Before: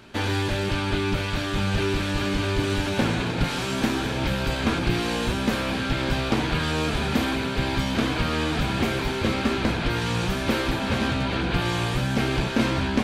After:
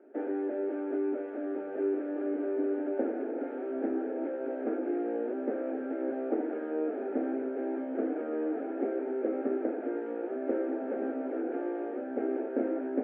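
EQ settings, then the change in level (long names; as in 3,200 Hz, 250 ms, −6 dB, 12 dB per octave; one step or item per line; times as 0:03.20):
elliptic high-pass filter 260 Hz, stop band 50 dB
Bessel low-pass filter 860 Hz, order 6
phaser with its sweep stopped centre 430 Hz, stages 4
0.0 dB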